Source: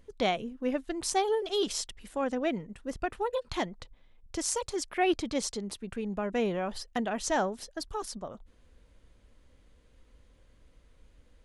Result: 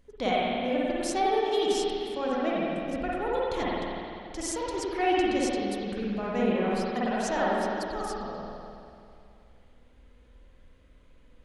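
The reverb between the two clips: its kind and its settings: spring tank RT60 2.5 s, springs 49/53 ms, chirp 40 ms, DRR -6.5 dB; gain -3.5 dB

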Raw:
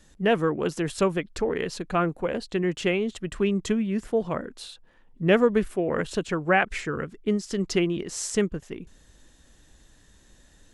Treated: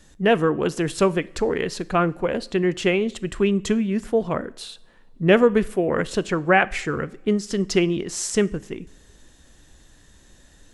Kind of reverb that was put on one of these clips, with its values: two-slope reverb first 0.51 s, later 2.1 s, from -19 dB, DRR 17.5 dB; gain +4 dB

